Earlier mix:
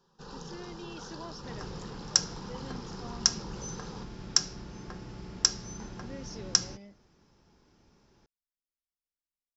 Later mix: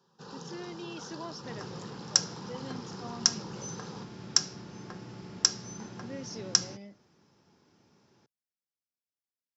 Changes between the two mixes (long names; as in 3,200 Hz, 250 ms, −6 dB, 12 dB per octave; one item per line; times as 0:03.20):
speech +3.0 dB
master: add high-pass filter 100 Hz 24 dB per octave